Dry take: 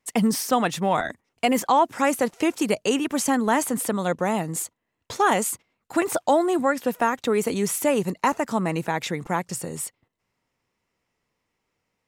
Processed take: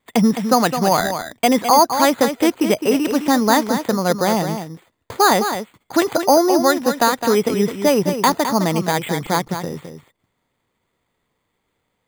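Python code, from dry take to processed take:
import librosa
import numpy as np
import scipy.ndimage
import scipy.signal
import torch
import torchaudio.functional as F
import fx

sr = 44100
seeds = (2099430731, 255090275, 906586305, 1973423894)

p1 = np.repeat(scipy.signal.resample_poly(x, 1, 8), 8)[:len(x)]
p2 = p1 + fx.echo_single(p1, sr, ms=211, db=-8.5, dry=0)
y = p2 * 10.0 ** (6.0 / 20.0)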